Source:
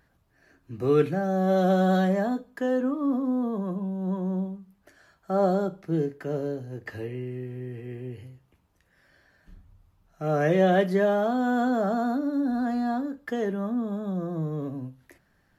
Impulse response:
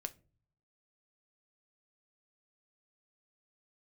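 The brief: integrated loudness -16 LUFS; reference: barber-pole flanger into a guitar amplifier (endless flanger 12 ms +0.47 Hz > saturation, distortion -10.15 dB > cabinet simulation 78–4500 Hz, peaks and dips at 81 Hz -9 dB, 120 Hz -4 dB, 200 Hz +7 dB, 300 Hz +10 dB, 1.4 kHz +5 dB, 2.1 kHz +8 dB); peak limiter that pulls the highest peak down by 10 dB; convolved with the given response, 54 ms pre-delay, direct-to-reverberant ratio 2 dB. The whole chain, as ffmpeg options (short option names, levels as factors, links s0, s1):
-filter_complex "[0:a]alimiter=limit=0.106:level=0:latency=1,asplit=2[s0][s1];[1:a]atrim=start_sample=2205,adelay=54[s2];[s1][s2]afir=irnorm=-1:irlink=0,volume=1.06[s3];[s0][s3]amix=inputs=2:normalize=0,asplit=2[s4][s5];[s5]adelay=12,afreqshift=0.47[s6];[s4][s6]amix=inputs=2:normalize=1,asoftclip=threshold=0.0376,highpass=78,equalizer=f=81:t=q:w=4:g=-9,equalizer=f=120:t=q:w=4:g=-4,equalizer=f=200:t=q:w=4:g=7,equalizer=f=300:t=q:w=4:g=10,equalizer=f=1400:t=q:w=4:g=5,equalizer=f=2100:t=q:w=4:g=8,lowpass=f=4500:w=0.5412,lowpass=f=4500:w=1.3066,volume=4.73"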